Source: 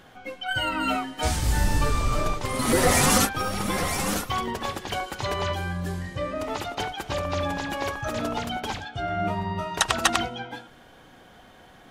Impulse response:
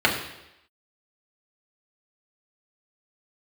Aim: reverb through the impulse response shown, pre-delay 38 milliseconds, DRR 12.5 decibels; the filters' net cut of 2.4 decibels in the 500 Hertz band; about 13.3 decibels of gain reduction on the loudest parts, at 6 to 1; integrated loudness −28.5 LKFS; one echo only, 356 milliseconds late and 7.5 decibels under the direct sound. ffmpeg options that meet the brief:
-filter_complex "[0:a]equalizer=frequency=500:width_type=o:gain=-3,acompressor=threshold=-32dB:ratio=6,aecho=1:1:356:0.422,asplit=2[link_01][link_02];[1:a]atrim=start_sample=2205,adelay=38[link_03];[link_02][link_03]afir=irnorm=-1:irlink=0,volume=-31dB[link_04];[link_01][link_04]amix=inputs=2:normalize=0,volume=6.5dB"

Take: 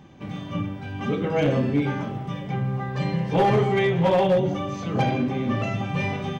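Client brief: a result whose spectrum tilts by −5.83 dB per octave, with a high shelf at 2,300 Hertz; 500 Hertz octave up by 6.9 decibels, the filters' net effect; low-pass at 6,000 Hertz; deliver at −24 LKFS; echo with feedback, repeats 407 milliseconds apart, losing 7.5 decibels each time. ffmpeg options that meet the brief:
ffmpeg -i in.wav -af "lowpass=6000,equalizer=frequency=500:width_type=o:gain=8.5,highshelf=frequency=2300:gain=-5.5,aecho=1:1:407|814|1221|1628|2035:0.422|0.177|0.0744|0.0312|0.0131,volume=-5dB" out.wav

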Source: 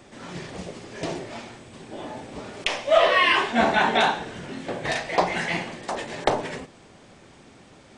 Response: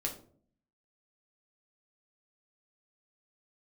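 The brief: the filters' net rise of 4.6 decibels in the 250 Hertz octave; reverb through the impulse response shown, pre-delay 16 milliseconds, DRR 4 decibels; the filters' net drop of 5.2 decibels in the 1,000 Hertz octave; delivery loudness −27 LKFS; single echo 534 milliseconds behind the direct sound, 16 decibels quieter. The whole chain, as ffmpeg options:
-filter_complex "[0:a]equalizer=frequency=250:width_type=o:gain=6,equalizer=frequency=1000:width_type=o:gain=-7.5,aecho=1:1:534:0.158,asplit=2[link_01][link_02];[1:a]atrim=start_sample=2205,adelay=16[link_03];[link_02][link_03]afir=irnorm=-1:irlink=0,volume=-6dB[link_04];[link_01][link_04]amix=inputs=2:normalize=0,volume=-3dB"

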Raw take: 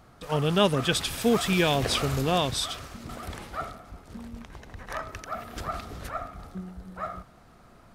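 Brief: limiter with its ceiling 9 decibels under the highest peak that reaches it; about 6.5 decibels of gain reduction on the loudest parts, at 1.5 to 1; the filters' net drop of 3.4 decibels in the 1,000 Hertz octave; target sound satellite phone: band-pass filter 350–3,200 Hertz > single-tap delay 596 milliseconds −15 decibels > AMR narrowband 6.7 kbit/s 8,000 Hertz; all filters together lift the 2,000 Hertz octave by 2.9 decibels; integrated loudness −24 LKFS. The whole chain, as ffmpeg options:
ffmpeg -i in.wav -af "equalizer=frequency=1000:width_type=o:gain=-7,equalizer=frequency=2000:width_type=o:gain=7,acompressor=threshold=-36dB:ratio=1.5,alimiter=limit=-23.5dB:level=0:latency=1,highpass=350,lowpass=3200,aecho=1:1:596:0.178,volume=17.5dB" -ar 8000 -c:a libopencore_amrnb -b:a 6700 out.amr

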